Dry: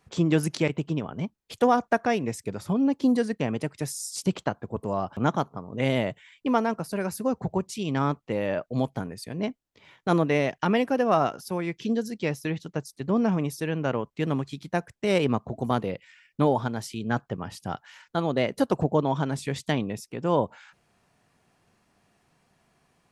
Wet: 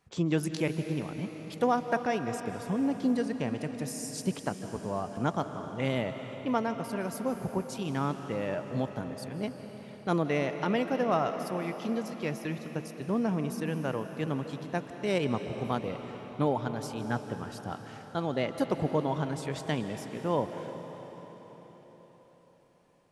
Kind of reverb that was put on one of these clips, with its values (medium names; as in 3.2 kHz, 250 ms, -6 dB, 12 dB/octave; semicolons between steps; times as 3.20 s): algorithmic reverb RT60 4.9 s, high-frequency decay 0.95×, pre-delay 115 ms, DRR 7.5 dB; trim -5.5 dB